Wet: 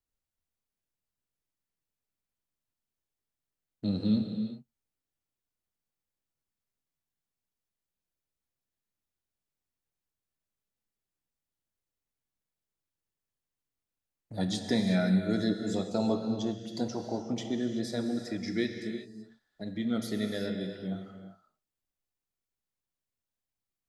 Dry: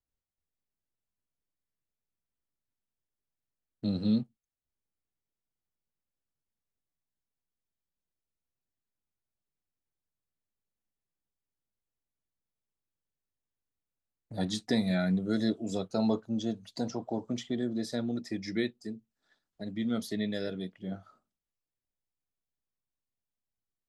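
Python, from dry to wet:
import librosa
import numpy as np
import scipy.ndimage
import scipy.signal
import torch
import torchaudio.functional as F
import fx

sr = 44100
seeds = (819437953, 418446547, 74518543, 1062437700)

y = fx.rev_gated(x, sr, seeds[0], gate_ms=410, shape='flat', drr_db=5.0)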